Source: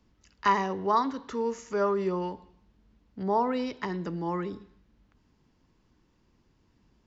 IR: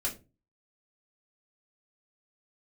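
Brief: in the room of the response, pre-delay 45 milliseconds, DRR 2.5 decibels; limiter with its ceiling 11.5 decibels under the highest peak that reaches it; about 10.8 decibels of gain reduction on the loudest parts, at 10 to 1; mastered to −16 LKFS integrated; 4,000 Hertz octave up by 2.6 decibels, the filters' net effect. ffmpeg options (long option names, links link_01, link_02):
-filter_complex "[0:a]equalizer=frequency=4000:width_type=o:gain=3.5,acompressor=threshold=-29dB:ratio=10,alimiter=level_in=5dB:limit=-24dB:level=0:latency=1,volume=-5dB,asplit=2[link_01][link_02];[1:a]atrim=start_sample=2205,adelay=45[link_03];[link_02][link_03]afir=irnorm=-1:irlink=0,volume=-6dB[link_04];[link_01][link_04]amix=inputs=2:normalize=0,volume=20.5dB"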